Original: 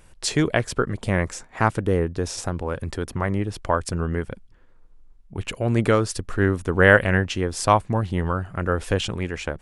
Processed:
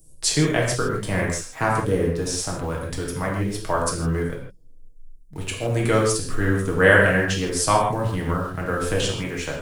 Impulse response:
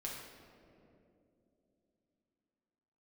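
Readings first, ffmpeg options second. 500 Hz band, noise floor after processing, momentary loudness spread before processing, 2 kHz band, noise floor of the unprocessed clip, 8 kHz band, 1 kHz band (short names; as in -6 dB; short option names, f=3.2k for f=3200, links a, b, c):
+0.5 dB, -44 dBFS, 11 LU, +1.0 dB, -51 dBFS, +6.5 dB, 0.0 dB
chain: -filter_complex "[0:a]highshelf=f=5.5k:g=12,acrossover=split=100|560|5300[a][b][c][d];[c]acrusher=bits=7:mix=0:aa=0.000001[e];[a][b][e][d]amix=inputs=4:normalize=0[f];[1:a]atrim=start_sample=2205,afade=t=out:st=0.22:d=0.01,atrim=end_sample=10143[g];[f][g]afir=irnorm=-1:irlink=0,volume=1dB"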